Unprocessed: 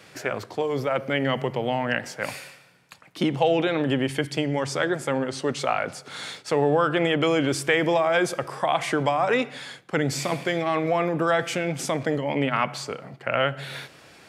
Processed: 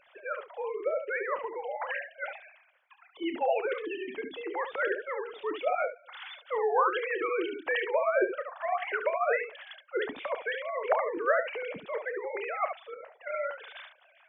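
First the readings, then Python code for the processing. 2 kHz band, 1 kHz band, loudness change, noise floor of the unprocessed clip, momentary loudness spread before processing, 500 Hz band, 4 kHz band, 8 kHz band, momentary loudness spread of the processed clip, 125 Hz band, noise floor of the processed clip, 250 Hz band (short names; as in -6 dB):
-5.5 dB, -5.5 dB, -7.0 dB, -51 dBFS, 11 LU, -6.0 dB, -14.5 dB, under -40 dB, 12 LU, under -35 dB, -63 dBFS, -15.5 dB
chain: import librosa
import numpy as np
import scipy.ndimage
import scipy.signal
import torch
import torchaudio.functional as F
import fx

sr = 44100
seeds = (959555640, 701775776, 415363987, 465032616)

y = fx.sine_speech(x, sr)
y = fx.room_early_taps(y, sr, ms=(30, 72), db=(-11.5, -6.5))
y = fx.hpss(y, sr, part='harmonic', gain_db=-12)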